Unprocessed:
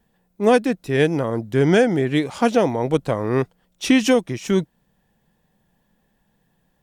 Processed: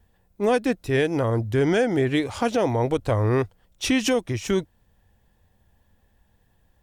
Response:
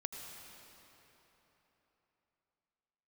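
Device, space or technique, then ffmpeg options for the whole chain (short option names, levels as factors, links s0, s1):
car stereo with a boomy subwoofer: -af "lowshelf=f=120:t=q:w=3:g=8,alimiter=limit=0.251:level=0:latency=1:release=131"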